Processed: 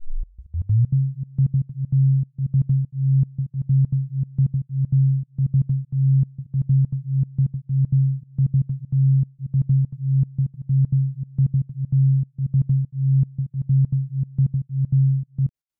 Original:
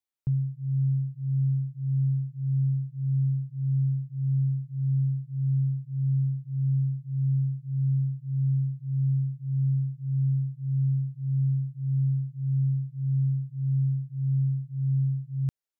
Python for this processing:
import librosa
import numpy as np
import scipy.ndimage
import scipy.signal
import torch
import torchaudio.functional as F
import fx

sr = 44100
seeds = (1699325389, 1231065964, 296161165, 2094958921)

y = fx.tape_start_head(x, sr, length_s=0.92)
y = fx.bass_treble(y, sr, bass_db=9, treble_db=0)
y = fx.step_gate(y, sr, bpm=195, pattern='xxx..x.x.xx.x', floor_db=-24.0, edge_ms=4.5)